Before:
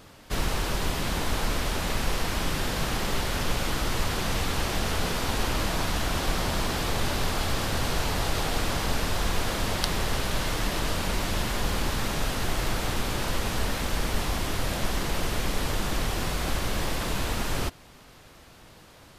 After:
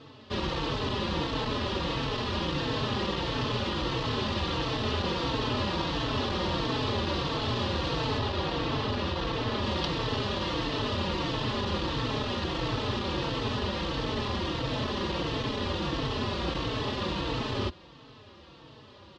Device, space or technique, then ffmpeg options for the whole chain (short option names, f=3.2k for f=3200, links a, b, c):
barber-pole flanger into a guitar amplifier: -filter_complex "[0:a]asettb=1/sr,asplit=3[a][b][c];[a]atrim=end=8.184[d];[b]atrim=start=8.18:end=9.63,asetpts=PTS-STARTPTS,afade=t=in:d=0.004:c=qsin,afade=t=out:st=1.446:d=0.004:c=qsin,highshelf=f=7.1k:g=-9[e];[c]atrim=start=9.626[f];[d][e]acrossfade=d=0.004:c1=hsin:c2=qsin[g];[g][f]acrossfade=d=0.004:c1=qsin:c2=hsin,asplit=2[h][i];[i]adelay=4,afreqshift=-1.5[j];[h][j]amix=inputs=2:normalize=1,asoftclip=type=tanh:threshold=-21dB,highpass=94,equalizer=f=180:t=q:w=4:g=-6,equalizer=f=720:t=q:w=4:g=-9,equalizer=f=1.5k:t=q:w=4:g=-9,equalizer=f=2.2k:t=q:w=4:g=-10,lowpass=f=4.1k:w=0.5412,lowpass=f=4.1k:w=1.3066,volume=7dB"